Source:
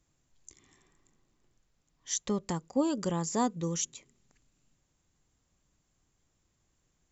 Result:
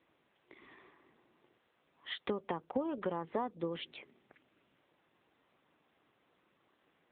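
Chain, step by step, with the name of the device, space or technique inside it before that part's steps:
voicemail (band-pass filter 340–2,900 Hz; downward compressor 10 to 1, threshold −43 dBFS, peak gain reduction 18 dB; level +11.5 dB; AMR narrowband 7.95 kbit/s 8,000 Hz)

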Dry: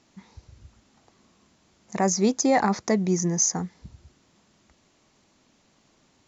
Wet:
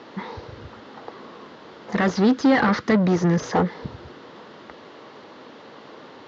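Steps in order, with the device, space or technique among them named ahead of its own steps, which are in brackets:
0:01.95–0:03.53: flat-topped bell 600 Hz −10.5 dB
overdrive pedal into a guitar cabinet (mid-hump overdrive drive 31 dB, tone 1,200 Hz, clips at −11 dBFS; loudspeaker in its box 88–4,400 Hz, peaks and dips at 190 Hz −4 dB, 470 Hz +7 dB, 690 Hz −4 dB, 2,400 Hz −7 dB)
level +3 dB

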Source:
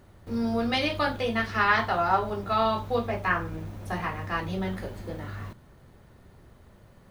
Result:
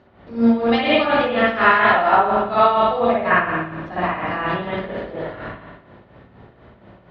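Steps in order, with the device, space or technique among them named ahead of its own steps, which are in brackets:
combo amplifier with spring reverb and tremolo (spring reverb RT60 1.1 s, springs 56 ms, chirp 65 ms, DRR −8 dB; amplitude tremolo 4.2 Hz, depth 60%; loudspeaker in its box 76–4,200 Hz, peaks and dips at 84 Hz −9 dB, 150 Hz −7 dB, 660 Hz +4 dB)
level +3.5 dB

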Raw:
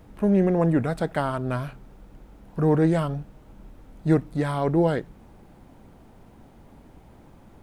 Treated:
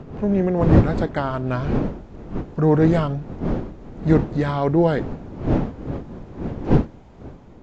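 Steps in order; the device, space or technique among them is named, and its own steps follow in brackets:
smartphone video outdoors (wind on the microphone 290 Hz −27 dBFS; automatic gain control gain up to 4 dB; AAC 48 kbit/s 16,000 Hz)

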